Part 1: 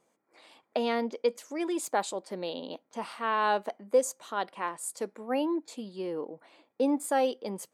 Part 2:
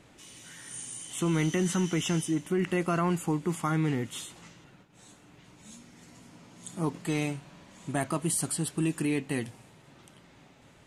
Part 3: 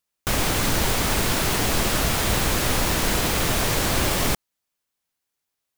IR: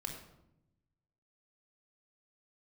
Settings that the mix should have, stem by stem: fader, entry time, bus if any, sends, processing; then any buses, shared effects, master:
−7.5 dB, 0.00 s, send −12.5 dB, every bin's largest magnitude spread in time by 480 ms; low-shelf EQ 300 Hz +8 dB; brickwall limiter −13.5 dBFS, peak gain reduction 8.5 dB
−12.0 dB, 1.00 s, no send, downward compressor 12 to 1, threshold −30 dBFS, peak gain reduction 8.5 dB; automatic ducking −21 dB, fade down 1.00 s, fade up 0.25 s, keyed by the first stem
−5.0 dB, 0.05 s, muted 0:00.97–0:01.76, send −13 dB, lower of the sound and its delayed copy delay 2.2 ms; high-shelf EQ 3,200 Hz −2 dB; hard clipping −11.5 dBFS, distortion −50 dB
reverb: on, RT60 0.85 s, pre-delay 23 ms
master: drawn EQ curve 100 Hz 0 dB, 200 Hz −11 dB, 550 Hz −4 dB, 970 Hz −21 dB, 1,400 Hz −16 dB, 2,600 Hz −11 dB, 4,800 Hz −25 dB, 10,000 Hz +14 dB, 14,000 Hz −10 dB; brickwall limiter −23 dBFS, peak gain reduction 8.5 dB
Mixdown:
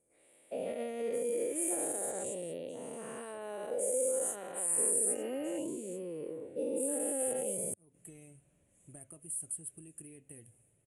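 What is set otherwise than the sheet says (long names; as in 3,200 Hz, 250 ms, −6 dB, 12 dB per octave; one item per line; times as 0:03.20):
stem 3: muted
reverb: off
master: missing brickwall limiter −23 dBFS, peak gain reduction 8.5 dB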